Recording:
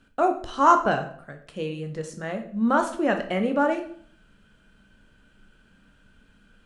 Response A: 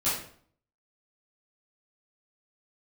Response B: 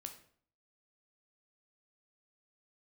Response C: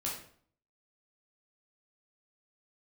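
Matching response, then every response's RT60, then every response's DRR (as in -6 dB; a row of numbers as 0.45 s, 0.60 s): B; 0.55 s, 0.55 s, 0.55 s; -13.0 dB, 5.0 dB, -5.0 dB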